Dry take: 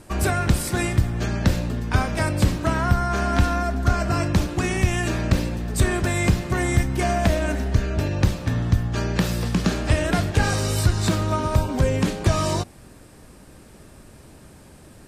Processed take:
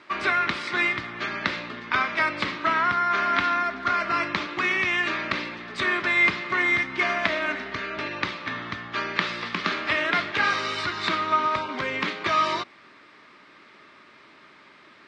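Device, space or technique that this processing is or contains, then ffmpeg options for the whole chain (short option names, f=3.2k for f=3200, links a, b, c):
phone earpiece: -af "highpass=470,equalizer=f=500:t=q:w=4:g=-10,equalizer=f=750:t=q:w=4:g=-9,equalizer=f=1.2k:t=q:w=4:g=7,equalizer=f=2.1k:t=q:w=4:g=9,equalizer=f=3.6k:t=q:w=4:g=3,lowpass=f=4.3k:w=0.5412,lowpass=f=4.3k:w=1.3066,volume=1.5dB"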